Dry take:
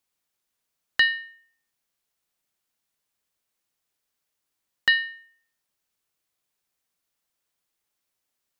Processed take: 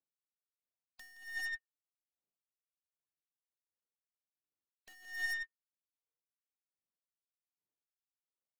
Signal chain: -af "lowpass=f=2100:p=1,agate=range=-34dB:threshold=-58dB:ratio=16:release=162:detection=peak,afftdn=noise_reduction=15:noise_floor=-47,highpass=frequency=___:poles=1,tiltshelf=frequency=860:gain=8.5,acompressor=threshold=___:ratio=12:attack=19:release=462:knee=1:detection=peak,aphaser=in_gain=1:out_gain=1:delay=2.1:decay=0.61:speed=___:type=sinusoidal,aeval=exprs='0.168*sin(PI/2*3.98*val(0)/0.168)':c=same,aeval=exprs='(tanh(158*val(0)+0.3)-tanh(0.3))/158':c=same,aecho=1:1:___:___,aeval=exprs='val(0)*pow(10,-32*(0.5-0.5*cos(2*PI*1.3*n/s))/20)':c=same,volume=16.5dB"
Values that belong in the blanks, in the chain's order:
290, -30dB, 0.9, 170, 0.447